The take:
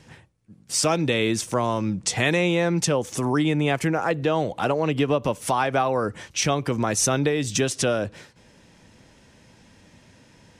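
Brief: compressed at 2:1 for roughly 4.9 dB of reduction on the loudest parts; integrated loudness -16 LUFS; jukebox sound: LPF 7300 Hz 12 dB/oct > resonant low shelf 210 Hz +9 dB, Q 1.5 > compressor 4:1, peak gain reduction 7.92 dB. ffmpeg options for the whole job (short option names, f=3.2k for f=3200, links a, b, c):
-af "acompressor=threshold=-26dB:ratio=2,lowpass=7.3k,lowshelf=f=210:t=q:w=1.5:g=9,acompressor=threshold=-24dB:ratio=4,volume=12.5dB"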